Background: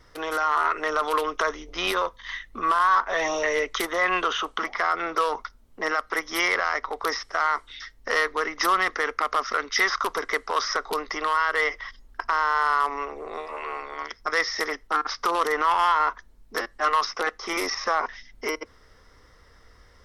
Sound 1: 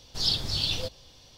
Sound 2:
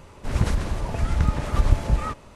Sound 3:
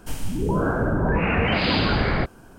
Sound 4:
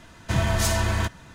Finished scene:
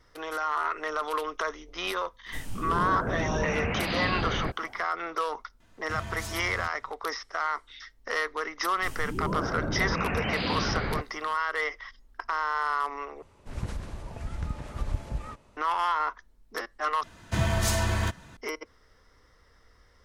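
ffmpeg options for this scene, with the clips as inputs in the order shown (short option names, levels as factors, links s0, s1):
-filter_complex "[3:a]asplit=2[s0][s1];[4:a]asplit=2[s2][s3];[0:a]volume=0.501,asplit=3[s4][s5][s6];[s4]atrim=end=13.224[s7];[2:a]atrim=end=2.35,asetpts=PTS-STARTPTS,volume=0.251[s8];[s5]atrim=start=15.566:end=17.034[s9];[s3]atrim=end=1.34,asetpts=PTS-STARTPTS,volume=0.708[s10];[s6]atrim=start=18.366[s11];[s0]atrim=end=2.58,asetpts=PTS-STARTPTS,volume=0.376,afade=t=in:d=0.004:c=hsin,afade=t=out:st=2.576:d=0.004:c=hsin,adelay=2260[s12];[s2]atrim=end=1.34,asetpts=PTS-STARTPTS,volume=0.188,afade=t=in:d=0.004:c=hsin,afade=t=out:st=1.336:d=0.004:c=hsin,adelay=5600[s13];[s1]atrim=end=2.58,asetpts=PTS-STARTPTS,volume=0.376,afade=t=in:d=0.004:c=hsin,afade=t=out:st=2.576:d=0.004:c=hsin,adelay=8760[s14];[s7][s8]acrossfade=d=0.004:c1=hsin:c2=hsin[s15];[s15][s9]acrossfade=d=0.004:c1=hsin:c2=hsin[s16];[s16][s10]acrossfade=d=0.004:c1=hsin:c2=hsin[s17];[s17][s11]acrossfade=d=0.004:c1=hsin:c2=hsin[s18];[s18][s12][s13][s14]amix=inputs=4:normalize=0"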